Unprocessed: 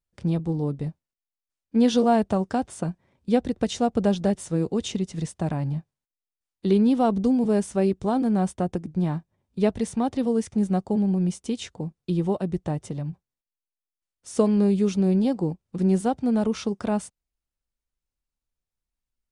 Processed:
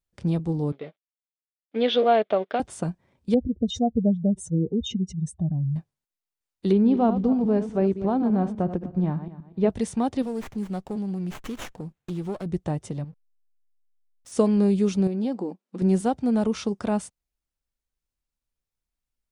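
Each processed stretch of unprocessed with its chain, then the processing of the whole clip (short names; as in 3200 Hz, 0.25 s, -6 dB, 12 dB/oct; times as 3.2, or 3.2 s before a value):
0.72–2.6 G.711 law mismatch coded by A + speaker cabinet 390–3800 Hz, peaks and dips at 420 Hz +5 dB, 610 Hz +8 dB, 930 Hz -5 dB, 1400 Hz +3 dB, 2200 Hz +8 dB, 3400 Hz +9 dB
3.34–5.76 spectral contrast raised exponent 2.5 + bell 62 Hz +11.5 dB 1 oct
6.72–9.7 regenerating reverse delay 0.122 s, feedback 45%, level -10.5 dB + LPF 4600 Hz + high shelf 2300 Hz -11 dB
10.22–12.46 compressor 1.5:1, threshold -39 dBFS + high shelf 2400 Hz +9.5 dB + running maximum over 9 samples
13.04–14.32 compressor 2:1, threshold -44 dBFS + backlash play -44.5 dBFS
15.07–15.82 high shelf 7500 Hz -11 dB + compressor, threshold -22 dBFS + brick-wall FIR high-pass 180 Hz
whole clip: dry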